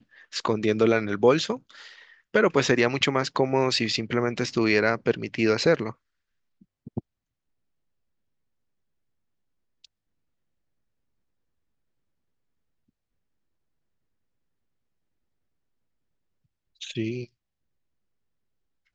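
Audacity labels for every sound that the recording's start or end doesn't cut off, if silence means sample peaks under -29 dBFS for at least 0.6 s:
2.340000	5.900000	sound
6.870000	6.990000	sound
16.820000	17.240000	sound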